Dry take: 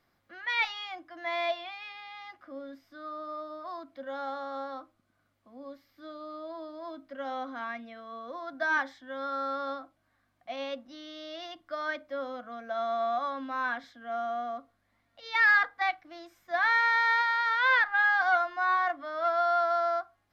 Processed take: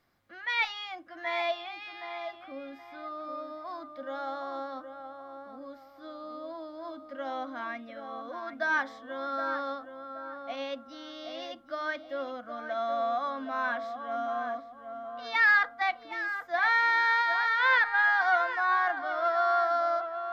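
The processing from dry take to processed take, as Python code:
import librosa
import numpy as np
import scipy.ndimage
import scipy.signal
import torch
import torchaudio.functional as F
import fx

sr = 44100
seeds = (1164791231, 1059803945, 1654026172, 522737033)

y = x + fx.echo_tape(x, sr, ms=771, feedback_pct=36, wet_db=-6.5, lp_hz=1600.0, drive_db=18.0, wow_cents=28, dry=0)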